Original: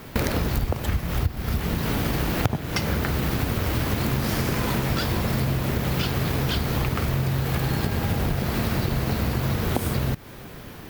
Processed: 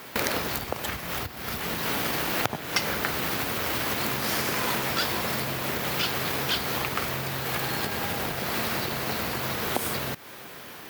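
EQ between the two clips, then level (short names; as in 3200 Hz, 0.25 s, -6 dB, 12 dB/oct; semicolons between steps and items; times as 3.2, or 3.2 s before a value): HPF 760 Hz 6 dB/oct; +3.0 dB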